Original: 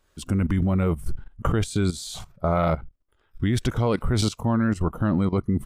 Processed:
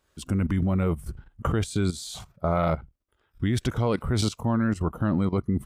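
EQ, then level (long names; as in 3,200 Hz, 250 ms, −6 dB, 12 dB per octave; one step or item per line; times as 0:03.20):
high-pass filter 41 Hz
−2.0 dB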